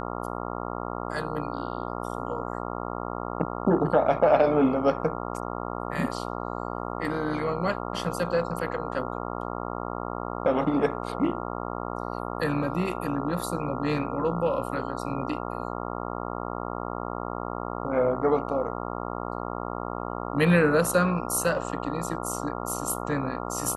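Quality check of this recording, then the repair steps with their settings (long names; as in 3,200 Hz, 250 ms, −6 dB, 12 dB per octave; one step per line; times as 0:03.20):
mains buzz 60 Hz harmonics 23 −33 dBFS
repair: hum removal 60 Hz, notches 23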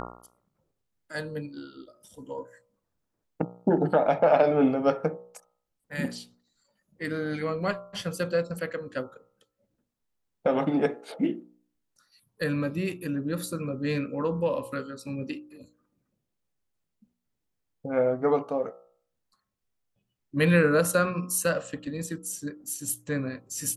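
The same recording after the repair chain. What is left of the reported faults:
none of them is left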